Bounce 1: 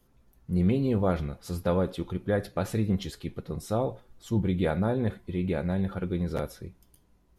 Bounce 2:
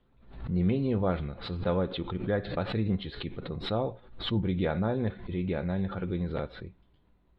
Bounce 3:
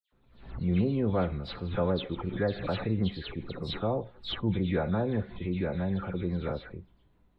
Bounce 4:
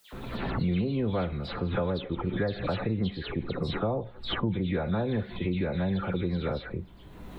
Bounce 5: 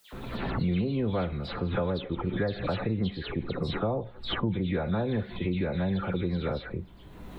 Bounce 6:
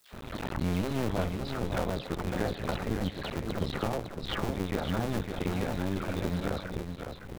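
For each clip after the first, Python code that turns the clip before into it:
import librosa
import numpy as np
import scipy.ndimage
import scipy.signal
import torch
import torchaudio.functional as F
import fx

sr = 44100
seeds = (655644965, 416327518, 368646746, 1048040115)

y1 = scipy.signal.sosfilt(scipy.signal.ellip(4, 1.0, 40, 4000.0, 'lowpass', fs=sr, output='sos'), x)
y1 = fx.pre_swell(y1, sr, db_per_s=92.0)
y1 = F.gain(torch.from_numpy(y1), -1.5).numpy()
y2 = fx.dispersion(y1, sr, late='lows', ms=122.0, hz=2700.0)
y3 = fx.band_squash(y2, sr, depth_pct=100)
y4 = y3
y5 = fx.cycle_switch(y4, sr, every=2, mode='muted')
y5 = y5 + 10.0 ** (-6.5 / 20.0) * np.pad(y5, (int(556 * sr / 1000.0), 0))[:len(y5)]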